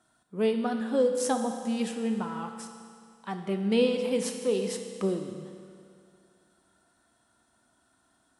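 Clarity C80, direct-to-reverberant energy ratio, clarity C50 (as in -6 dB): 7.5 dB, 5.0 dB, 6.5 dB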